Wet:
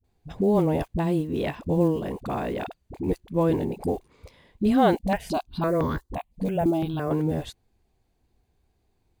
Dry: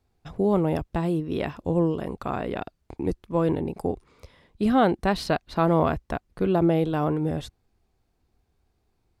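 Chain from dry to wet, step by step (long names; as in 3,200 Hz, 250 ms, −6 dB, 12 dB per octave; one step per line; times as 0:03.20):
one scale factor per block 7 bits
parametric band 1,300 Hz −7 dB 0.3 octaves
notch filter 5,400 Hz, Q 10
all-pass dispersion highs, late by 43 ms, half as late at 410 Hz
0:04.96–0:07.11: step-sequenced phaser 5.9 Hz 370–2,600 Hz
level +1 dB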